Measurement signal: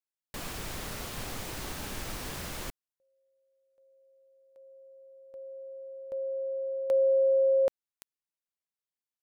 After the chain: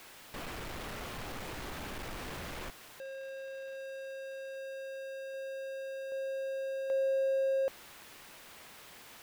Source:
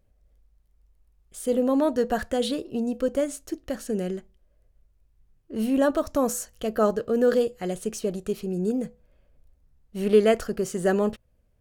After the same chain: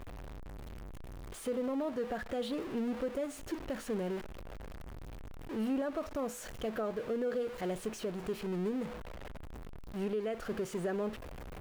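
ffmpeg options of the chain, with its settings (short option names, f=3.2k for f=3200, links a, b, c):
-af "aeval=exprs='val(0)+0.5*0.0398*sgn(val(0))':c=same,bass=f=250:g=-3,treble=f=4k:g=-10,alimiter=limit=-18.5dB:level=0:latency=1:release=230,volume=-8.5dB"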